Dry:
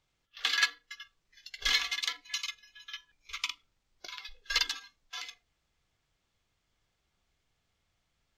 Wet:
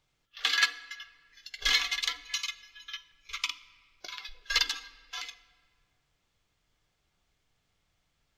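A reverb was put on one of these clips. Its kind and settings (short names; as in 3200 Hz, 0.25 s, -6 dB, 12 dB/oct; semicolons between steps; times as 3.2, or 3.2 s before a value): shoebox room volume 3800 m³, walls mixed, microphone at 0.42 m; gain +2 dB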